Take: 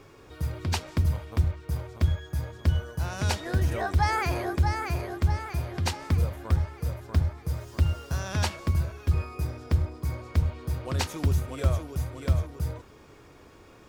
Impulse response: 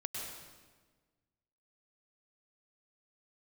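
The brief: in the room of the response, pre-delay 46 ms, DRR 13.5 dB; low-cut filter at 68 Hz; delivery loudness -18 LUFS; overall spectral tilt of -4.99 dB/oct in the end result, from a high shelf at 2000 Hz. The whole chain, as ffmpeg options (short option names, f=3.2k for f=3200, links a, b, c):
-filter_complex "[0:a]highpass=68,highshelf=f=2k:g=4,asplit=2[a][b];[1:a]atrim=start_sample=2205,adelay=46[c];[b][c]afir=irnorm=-1:irlink=0,volume=-14.5dB[d];[a][d]amix=inputs=2:normalize=0,volume=11.5dB"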